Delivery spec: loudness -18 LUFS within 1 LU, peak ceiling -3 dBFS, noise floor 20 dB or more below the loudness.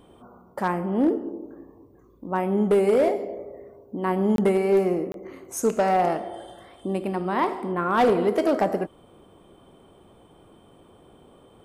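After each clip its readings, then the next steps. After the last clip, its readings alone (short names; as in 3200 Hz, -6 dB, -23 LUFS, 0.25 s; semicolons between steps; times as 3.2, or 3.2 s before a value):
clipped 0.8%; flat tops at -14.0 dBFS; dropouts 2; longest dropout 22 ms; loudness -24.0 LUFS; peak -14.0 dBFS; loudness target -18.0 LUFS
-> clip repair -14 dBFS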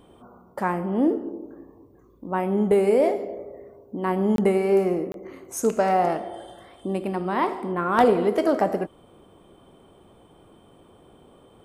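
clipped 0.0%; dropouts 2; longest dropout 22 ms
-> interpolate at 4.36/5.12, 22 ms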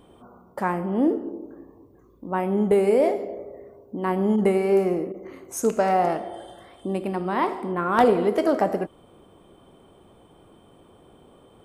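dropouts 0; loudness -23.5 LUFS; peak -5.0 dBFS; loudness target -18.0 LUFS
-> gain +5.5 dB; limiter -3 dBFS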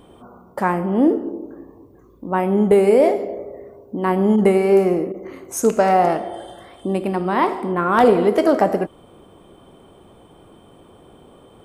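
loudness -18.0 LUFS; peak -3.0 dBFS; noise floor -49 dBFS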